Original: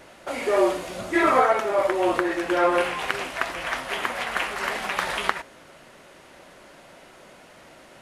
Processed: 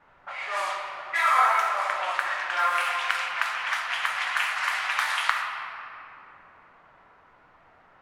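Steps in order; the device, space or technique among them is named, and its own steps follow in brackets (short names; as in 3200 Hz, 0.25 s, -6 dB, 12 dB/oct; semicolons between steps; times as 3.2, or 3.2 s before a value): inverse Chebyshev high-pass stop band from 210 Hz, stop band 70 dB; cassette deck with a dynamic noise filter (white noise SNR 23 dB; low-pass opened by the level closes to 840 Hz, open at -24 dBFS); shoebox room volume 150 m³, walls hard, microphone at 0.35 m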